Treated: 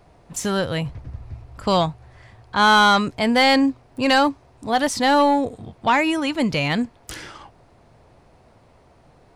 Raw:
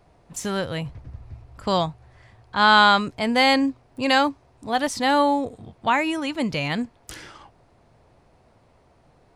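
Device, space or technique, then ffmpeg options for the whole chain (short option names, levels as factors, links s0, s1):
saturation between pre-emphasis and de-emphasis: -af "highshelf=f=5900:g=9,asoftclip=type=tanh:threshold=0.237,highshelf=f=5900:g=-9,volume=1.68"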